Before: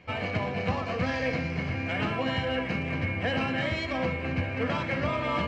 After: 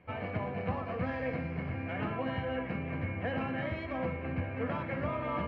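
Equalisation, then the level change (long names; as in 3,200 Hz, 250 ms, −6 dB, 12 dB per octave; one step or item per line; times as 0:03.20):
low-pass filter 1,800 Hz 12 dB per octave
−5.0 dB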